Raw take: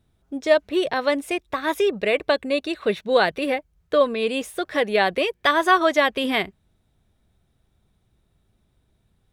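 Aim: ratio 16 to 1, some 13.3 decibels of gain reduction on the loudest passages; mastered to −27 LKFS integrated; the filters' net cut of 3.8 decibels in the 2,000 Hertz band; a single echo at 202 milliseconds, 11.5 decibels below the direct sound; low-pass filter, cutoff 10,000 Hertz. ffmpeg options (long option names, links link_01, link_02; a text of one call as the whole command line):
ffmpeg -i in.wav -af "lowpass=10000,equalizer=frequency=2000:width_type=o:gain=-5,acompressor=threshold=-26dB:ratio=16,aecho=1:1:202:0.266,volume=4.5dB" out.wav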